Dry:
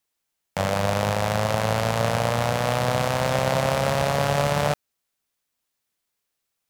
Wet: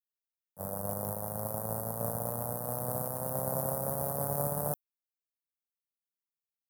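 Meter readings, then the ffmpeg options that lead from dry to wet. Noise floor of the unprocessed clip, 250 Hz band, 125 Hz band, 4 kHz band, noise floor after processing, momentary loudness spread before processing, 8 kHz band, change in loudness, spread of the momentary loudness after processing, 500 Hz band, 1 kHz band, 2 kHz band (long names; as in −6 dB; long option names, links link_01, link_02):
−80 dBFS, −11.5 dB, −13.0 dB, −31.0 dB, below −85 dBFS, 3 LU, −5.0 dB, −10.5 dB, 4 LU, −12.5 dB, −14.5 dB, −27.0 dB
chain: -af "agate=range=-33dB:threshold=-15dB:ratio=3:detection=peak,highpass=frequency=150:poles=1,lowshelf=frequency=500:gain=6.5,aexciter=amount=15.2:drive=4.8:freq=9600,asuperstop=centerf=2800:order=4:qfactor=0.52,volume=-8dB"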